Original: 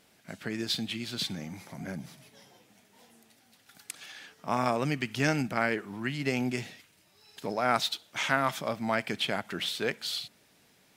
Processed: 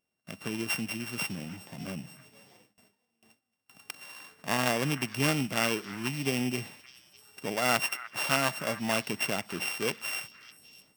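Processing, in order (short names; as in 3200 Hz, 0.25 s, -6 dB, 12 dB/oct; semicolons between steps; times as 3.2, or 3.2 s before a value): sample sorter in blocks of 16 samples; delay with a stepping band-pass 0.302 s, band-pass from 1600 Hz, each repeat 1.4 oct, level -11.5 dB; gate with hold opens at -46 dBFS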